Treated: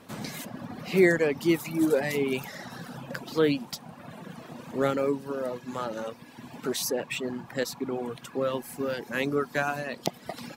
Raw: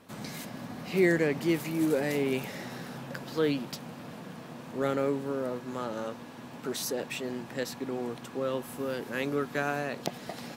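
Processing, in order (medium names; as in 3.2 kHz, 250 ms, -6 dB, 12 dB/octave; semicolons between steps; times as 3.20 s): reverb removal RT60 1.5 s; trim +4.5 dB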